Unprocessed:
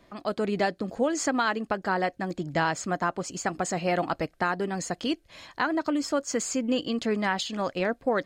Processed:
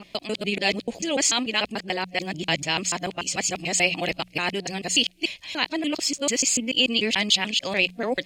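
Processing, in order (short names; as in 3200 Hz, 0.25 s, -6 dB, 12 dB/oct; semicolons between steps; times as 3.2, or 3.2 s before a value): local time reversal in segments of 0.146 s; resonant high shelf 1900 Hz +10 dB, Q 3; de-hum 60.37 Hz, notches 3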